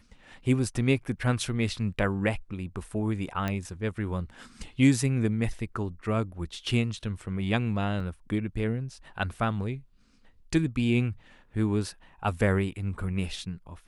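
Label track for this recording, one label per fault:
3.480000	3.480000	click −16 dBFS
8.000000	8.000000	drop-out 2.5 ms

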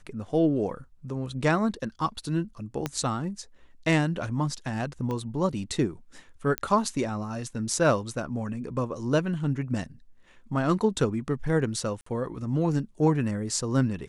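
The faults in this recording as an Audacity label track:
2.860000	2.860000	click −13 dBFS
5.110000	5.110000	click −21 dBFS
6.580000	6.580000	click −11 dBFS
12.010000	12.060000	drop-out 54 ms

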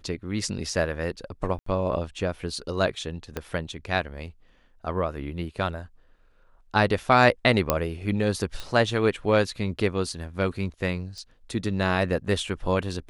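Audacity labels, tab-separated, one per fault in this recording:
1.590000	1.660000	drop-out 74 ms
3.370000	3.370000	click −15 dBFS
7.700000	7.700000	click −5 dBFS
8.600000	8.600000	click −20 dBFS
11.180000	11.180000	click −29 dBFS

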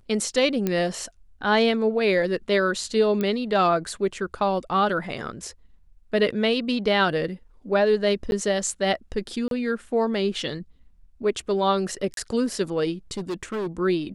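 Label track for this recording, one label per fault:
0.670000	0.670000	click −11 dBFS
3.210000	3.210000	click −14 dBFS
8.310000	8.320000	drop-out 11 ms
9.480000	9.510000	drop-out 32 ms
12.140000	12.170000	drop-out 32 ms
13.120000	13.670000	clipping −25 dBFS

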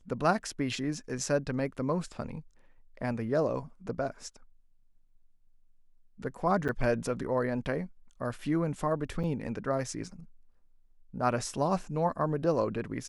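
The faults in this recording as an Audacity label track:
6.680000	6.690000	drop-out 7.8 ms
9.230000	9.240000	drop-out 6.7 ms

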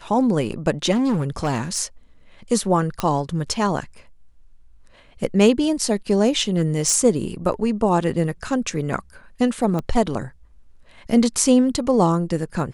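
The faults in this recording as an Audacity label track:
0.910000	1.800000	clipping −16.5 dBFS
3.000000	3.000000	click −8 dBFS
6.380000	6.970000	clipping −12 dBFS
9.790000	9.790000	click −14 dBFS

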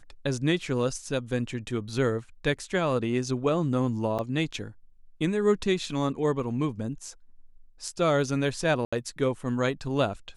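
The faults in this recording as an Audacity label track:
4.180000	4.190000	drop-out 7.8 ms
8.850000	8.930000	drop-out 75 ms

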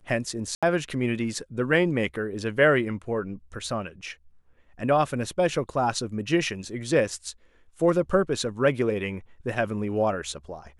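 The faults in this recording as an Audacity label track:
0.550000	0.630000	drop-out 76 ms

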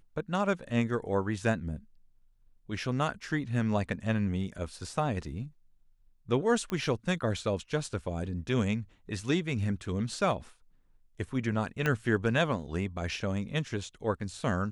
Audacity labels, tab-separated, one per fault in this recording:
6.700000	6.700000	click −21 dBFS
11.860000	11.860000	click −15 dBFS

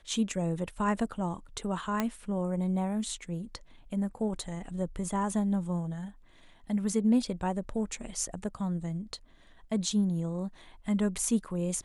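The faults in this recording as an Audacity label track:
2.000000	2.000000	click −14 dBFS

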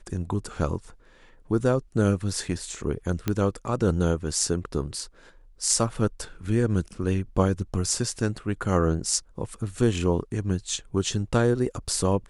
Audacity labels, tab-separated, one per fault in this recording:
3.280000	3.280000	click −11 dBFS

